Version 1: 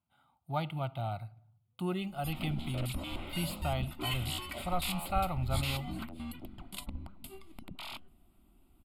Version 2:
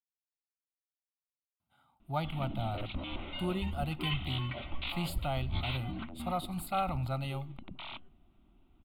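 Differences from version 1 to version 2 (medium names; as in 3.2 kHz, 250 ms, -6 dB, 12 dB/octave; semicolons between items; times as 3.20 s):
speech: entry +1.60 s; background: add steep low-pass 3.9 kHz 72 dB/octave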